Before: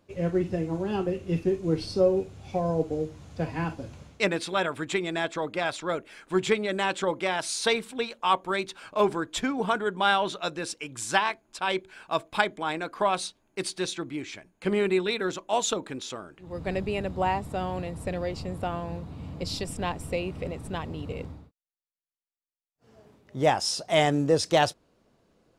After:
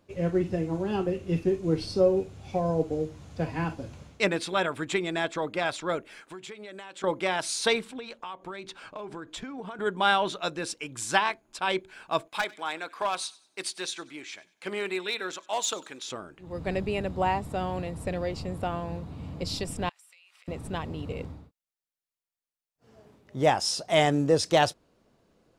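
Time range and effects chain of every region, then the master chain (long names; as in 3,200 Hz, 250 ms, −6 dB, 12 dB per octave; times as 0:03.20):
0:06.21–0:07.04: high-pass filter 55 Hz + low-shelf EQ 270 Hz −9 dB + downward compressor 8 to 1, threshold −39 dBFS
0:07.81–0:09.79: high-shelf EQ 9,300 Hz −11 dB + downward compressor 16 to 1, threshold −34 dBFS
0:12.28–0:16.08: high-pass filter 890 Hz 6 dB per octave + gain into a clipping stage and back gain 21 dB + delay with a high-pass on its return 96 ms, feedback 33%, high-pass 1,400 Hz, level −20 dB
0:19.89–0:20.48: Bessel high-pass filter 2,100 Hz, order 4 + downward compressor 10 to 1, threshold −54 dBFS
whole clip: no processing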